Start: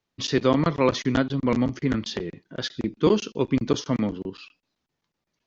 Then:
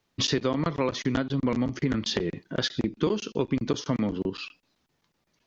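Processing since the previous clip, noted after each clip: compressor 6:1, threshold -30 dBFS, peak gain reduction 15 dB; gain +7 dB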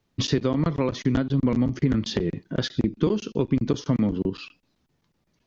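low shelf 360 Hz +10 dB; gain -2.5 dB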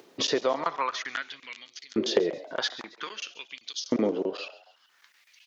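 frequency-shifting echo 0.137 s, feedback 40%, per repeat +120 Hz, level -18.5 dB; upward compressor, threshold -43 dBFS; LFO high-pass saw up 0.51 Hz 350–5000 Hz; gain +1 dB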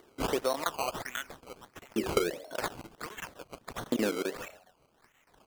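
decimation with a swept rate 17×, swing 100% 1.5 Hz; gain -4 dB

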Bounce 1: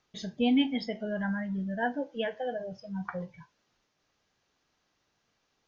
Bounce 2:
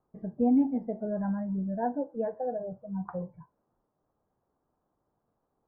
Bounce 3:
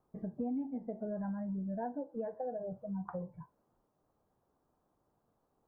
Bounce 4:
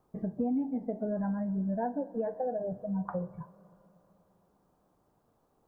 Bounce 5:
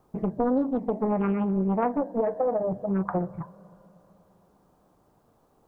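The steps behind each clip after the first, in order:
inverse Chebyshev low-pass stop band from 3500 Hz, stop band 60 dB; gain +1.5 dB
compressor 4:1, threshold -38 dBFS, peak gain reduction 15 dB; gain +1 dB
Schroeder reverb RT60 3.4 s, combs from 27 ms, DRR 18.5 dB; gain +6 dB
Doppler distortion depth 0.82 ms; gain +7.5 dB

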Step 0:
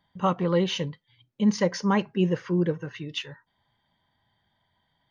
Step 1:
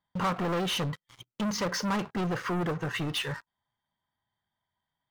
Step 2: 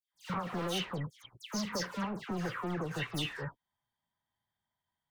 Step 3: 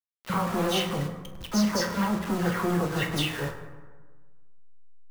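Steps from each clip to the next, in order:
compressor 2:1, threshold -38 dBFS, peak gain reduction 12 dB; sample leveller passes 5; bell 1200 Hz +6.5 dB 0.74 oct; gain -5.5 dB
compressor, threshold -30 dBFS, peak gain reduction 5.5 dB; dispersion lows, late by 0.145 s, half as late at 2100 Hz; gain -3.5 dB
level-crossing sampler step -42 dBFS; reverb RT60 1.4 s, pre-delay 7 ms, DRR 3 dB; gain +7.5 dB

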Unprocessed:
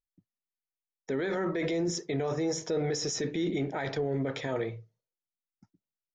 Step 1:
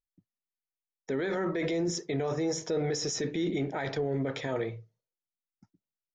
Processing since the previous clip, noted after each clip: nothing audible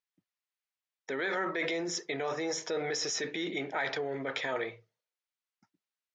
band-pass 2100 Hz, Q 0.59; gain +5.5 dB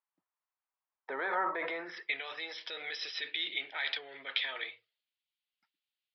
downsampling 11025 Hz; band-pass sweep 970 Hz -> 3200 Hz, 1.62–2.23; gain +8 dB

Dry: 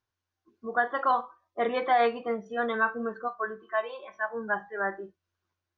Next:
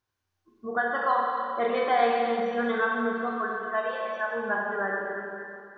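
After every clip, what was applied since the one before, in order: Schroeder reverb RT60 2.3 s, combs from 30 ms, DRR -1.5 dB; in parallel at -1 dB: compressor, threshold -31 dBFS, peak gain reduction 15 dB; on the sum: gain -4 dB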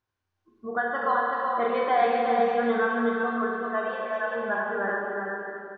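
LPF 3100 Hz 6 dB/oct; on a send: echo 0.377 s -4 dB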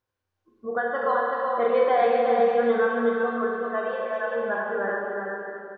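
bell 510 Hz +9.5 dB 0.32 oct; gain -1 dB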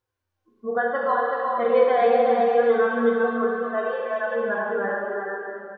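flange 0.75 Hz, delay 2.2 ms, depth 2.6 ms, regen -44%; harmonic-percussive split harmonic +6 dB

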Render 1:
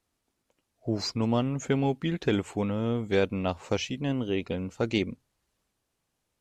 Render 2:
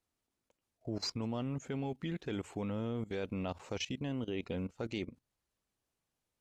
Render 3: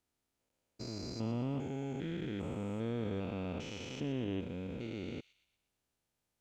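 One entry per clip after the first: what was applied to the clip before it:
level quantiser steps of 17 dB; gain -2.5 dB
stepped spectrum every 0.4 s; notch 1100 Hz, Q 16; thin delay 0.119 s, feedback 46%, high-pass 3000 Hz, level -11.5 dB; gain +2.5 dB

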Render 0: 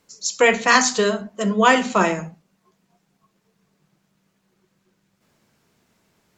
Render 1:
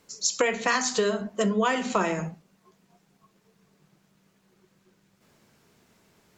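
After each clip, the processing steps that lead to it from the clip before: bell 410 Hz +2.5 dB 0.34 oct; compressor 8:1, threshold -23 dBFS, peak gain reduction 14 dB; gain +2 dB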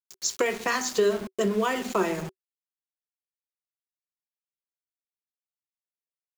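sample gate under -33 dBFS; bell 380 Hz +12 dB 0.22 oct; gain -2.5 dB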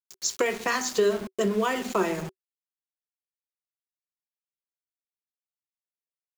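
nothing audible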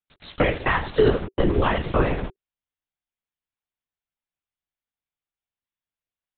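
LPC vocoder at 8 kHz whisper; gain +5 dB

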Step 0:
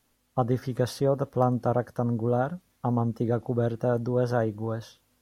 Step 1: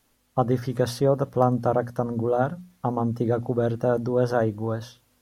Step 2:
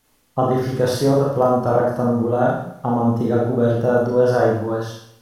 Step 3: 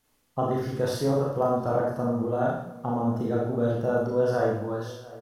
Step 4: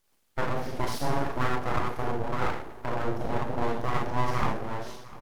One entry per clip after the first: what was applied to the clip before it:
notches 60/120/180/240 Hz; gain +3.5 dB
Schroeder reverb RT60 0.68 s, combs from 26 ms, DRR -3.5 dB; gain +1.5 dB
outdoor echo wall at 120 m, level -19 dB; gain -8 dB
full-wave rectifier

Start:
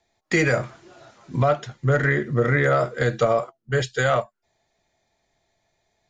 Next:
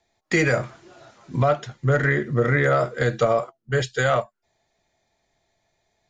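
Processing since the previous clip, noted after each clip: nothing audible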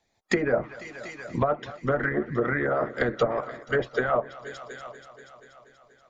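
multi-head echo 0.24 s, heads all three, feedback 44%, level -21 dB; harmonic-percussive split harmonic -17 dB; treble ducked by the level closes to 940 Hz, closed at -22 dBFS; gain +3.5 dB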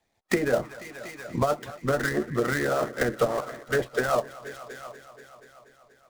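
switching dead time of 0.095 ms

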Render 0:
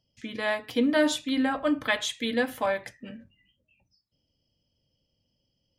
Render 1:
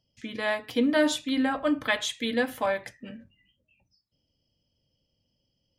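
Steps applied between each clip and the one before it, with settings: nothing audible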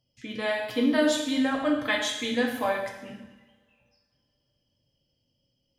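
two-slope reverb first 0.96 s, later 3 s, from -28 dB, DRR 1 dB; gain -2 dB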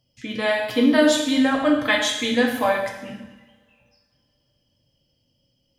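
notch 400 Hz, Q 12; gain +6.5 dB

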